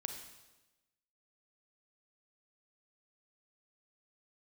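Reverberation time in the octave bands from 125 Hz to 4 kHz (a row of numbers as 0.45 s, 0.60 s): 1.1 s, 1.2 s, 1.1 s, 1.0 s, 1.0 s, 1.0 s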